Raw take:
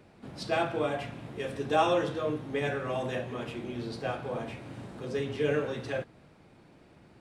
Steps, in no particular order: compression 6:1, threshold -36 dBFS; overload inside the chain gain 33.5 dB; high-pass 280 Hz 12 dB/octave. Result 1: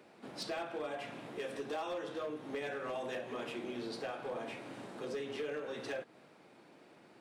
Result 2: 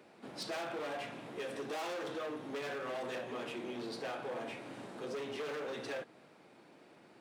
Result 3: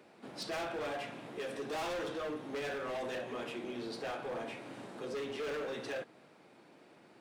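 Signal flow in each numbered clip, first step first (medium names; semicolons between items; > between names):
high-pass > compression > overload inside the chain; overload inside the chain > high-pass > compression; high-pass > overload inside the chain > compression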